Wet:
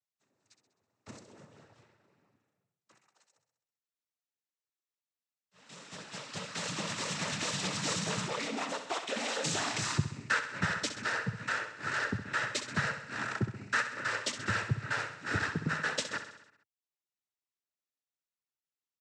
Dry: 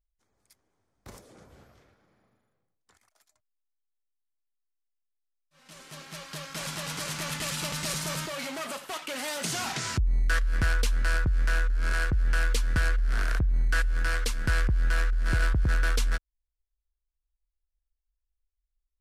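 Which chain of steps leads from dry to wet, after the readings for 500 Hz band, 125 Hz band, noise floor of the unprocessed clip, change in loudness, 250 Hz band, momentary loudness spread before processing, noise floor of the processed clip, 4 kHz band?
-1.0 dB, -8.0 dB, -83 dBFS, -4.5 dB, 0.0 dB, 8 LU, under -85 dBFS, -1.5 dB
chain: reverb removal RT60 0.57 s; noise vocoder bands 12; on a send: feedback echo 65 ms, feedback 59%, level -10 dB

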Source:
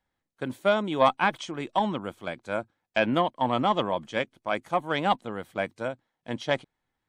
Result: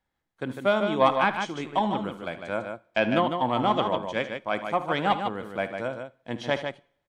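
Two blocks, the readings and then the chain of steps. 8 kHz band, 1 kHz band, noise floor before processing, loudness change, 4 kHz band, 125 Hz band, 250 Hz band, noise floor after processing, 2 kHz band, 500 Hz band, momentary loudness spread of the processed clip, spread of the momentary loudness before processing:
n/a, +1.0 dB, -83 dBFS, +1.0 dB, +0.5 dB, +1.0 dB, +1.0 dB, -81 dBFS, +1.0 dB, +1.0 dB, 12 LU, 12 LU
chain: high shelf 7300 Hz -5.5 dB; tapped delay 53/76/151 ms -17/-15/-6.5 dB; two-slope reverb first 0.52 s, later 1.6 s, from -25 dB, DRR 19.5 dB

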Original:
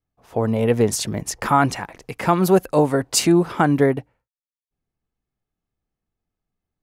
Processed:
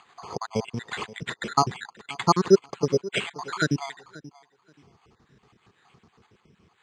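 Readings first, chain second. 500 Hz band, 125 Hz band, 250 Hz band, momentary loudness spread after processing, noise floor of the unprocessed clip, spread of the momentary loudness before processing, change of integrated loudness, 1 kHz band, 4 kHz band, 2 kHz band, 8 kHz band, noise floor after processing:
-6.0 dB, -8.5 dB, -9.5 dB, 17 LU, under -85 dBFS, 10 LU, -7.0 dB, -5.5 dB, -4.0 dB, -3.5 dB, -12.0 dB, -68 dBFS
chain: random spectral dropouts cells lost 67%; bell 3900 Hz -4.5 dB; upward compressor, threshold -28 dBFS; tape echo 0.531 s, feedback 24%, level -17 dB, low-pass 1100 Hz; careless resampling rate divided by 8×, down none, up hold; speaker cabinet 120–7000 Hz, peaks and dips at 280 Hz -7 dB, 410 Hz +4 dB, 600 Hz -10 dB, 1100 Hz +4 dB

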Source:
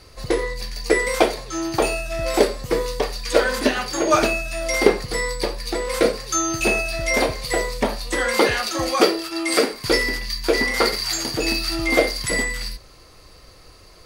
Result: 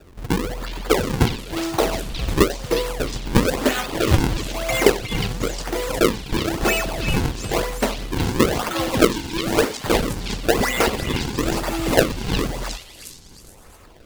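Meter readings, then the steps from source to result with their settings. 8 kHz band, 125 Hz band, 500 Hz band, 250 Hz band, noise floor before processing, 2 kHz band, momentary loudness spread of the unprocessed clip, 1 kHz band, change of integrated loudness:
-2.5 dB, +9.5 dB, -1.0 dB, +2.5 dB, -47 dBFS, -3.5 dB, 7 LU, -0.5 dB, -0.5 dB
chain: decimation with a swept rate 41×, swing 160% 1 Hz; delay with a stepping band-pass 0.36 s, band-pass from 3500 Hz, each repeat 0.7 oct, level -2 dB

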